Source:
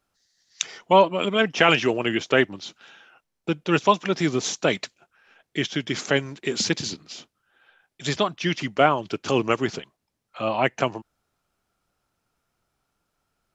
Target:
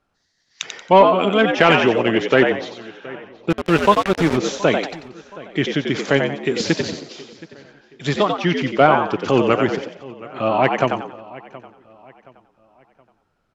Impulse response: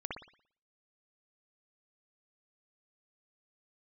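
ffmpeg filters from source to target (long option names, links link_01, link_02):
-filter_complex "[0:a]asplit=2[link_01][link_02];[link_02]asplit=4[link_03][link_04][link_05][link_06];[link_03]adelay=91,afreqshift=79,volume=-6dB[link_07];[link_04]adelay=182,afreqshift=158,volume=-15.9dB[link_08];[link_05]adelay=273,afreqshift=237,volume=-25.8dB[link_09];[link_06]adelay=364,afreqshift=316,volume=-35.7dB[link_10];[link_07][link_08][link_09][link_10]amix=inputs=4:normalize=0[link_11];[link_01][link_11]amix=inputs=2:normalize=0,asettb=1/sr,asplit=3[link_12][link_13][link_14];[link_12]atrim=end=3.504[link_15];[link_13]atrim=start=3.5:end=4.37,asetpts=PTS-STARTPTS,afade=type=in:duration=0.004:curve=qsin,afade=type=out:start_time=0.866:duration=0.004:curve=qsin,aeval=exprs='val(0)*gte(abs(val(0)),0.075)':channel_layout=same[link_16];[link_14]atrim=start=4.366[link_17];[link_15][link_16]acrossfade=duration=0.004:curve1=hsin:curve2=qsin[link_18];[link_18][link_17]acrossfade=duration=0.004:curve1=qsin:curve2=hsin,aemphasis=mode=reproduction:type=75fm,asplit=2[link_19][link_20];[link_20]adelay=722,lowpass=frequency=4600:poles=1,volume=-20.5dB,asplit=2[link_21][link_22];[link_22]adelay=722,lowpass=frequency=4600:poles=1,volume=0.38,asplit=2[link_23][link_24];[link_24]adelay=722,lowpass=frequency=4600:poles=1,volume=0.38[link_25];[link_21][link_23][link_25]amix=inputs=3:normalize=0[link_26];[link_19][link_26]amix=inputs=2:normalize=0,acontrast=34"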